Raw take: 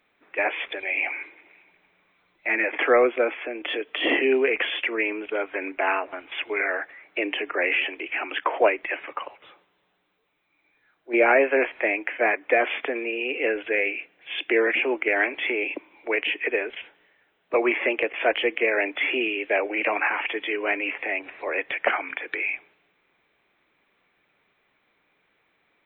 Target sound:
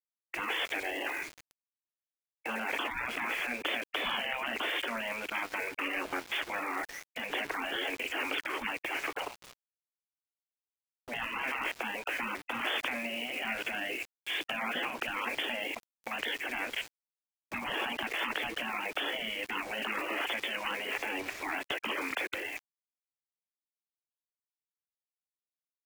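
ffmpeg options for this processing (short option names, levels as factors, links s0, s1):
-af "aeval=exprs='val(0)*gte(abs(val(0)),0.00668)':c=same,afftfilt=real='re*lt(hypot(re,im),0.0794)':imag='im*lt(hypot(re,im),0.0794)':win_size=1024:overlap=0.75,volume=1.58"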